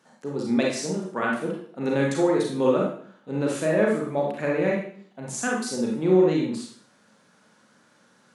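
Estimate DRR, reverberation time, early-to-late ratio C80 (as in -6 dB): -2.5 dB, 0.55 s, 6.5 dB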